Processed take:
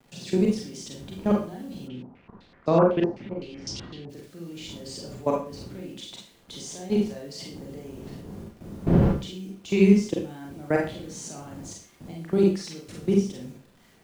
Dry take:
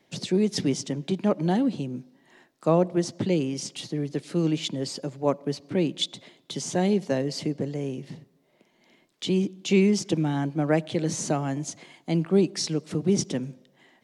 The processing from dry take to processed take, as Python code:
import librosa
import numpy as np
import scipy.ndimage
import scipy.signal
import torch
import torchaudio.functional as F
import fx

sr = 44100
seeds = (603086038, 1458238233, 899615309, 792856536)

y = fx.dmg_wind(x, sr, seeds[0], corner_hz=220.0, level_db=-32.0)
y = fx.highpass(y, sr, hz=58.0, slope=6)
y = fx.level_steps(y, sr, step_db=21)
y = fx.quant_dither(y, sr, seeds[1], bits=10, dither='none')
y = y + 10.0 ** (-13.5 / 20.0) * np.pad(y, (int(73 * sr / 1000.0), 0))[:len(y)]
y = fx.rev_schroeder(y, sr, rt60_s=0.34, comb_ms=32, drr_db=-1.0)
y = fx.filter_held_lowpass(y, sr, hz=7.9, low_hz=860.0, high_hz=5300.0, at=(1.87, 4.09), fade=0.02)